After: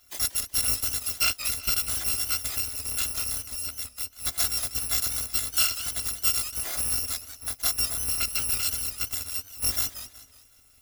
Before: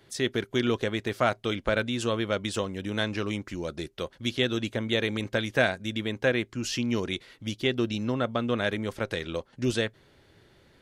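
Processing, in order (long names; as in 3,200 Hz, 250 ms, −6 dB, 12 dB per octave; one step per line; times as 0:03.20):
samples in bit-reversed order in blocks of 256 samples
feedback echo with a swinging delay time 186 ms, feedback 39%, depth 162 cents, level −11.5 dB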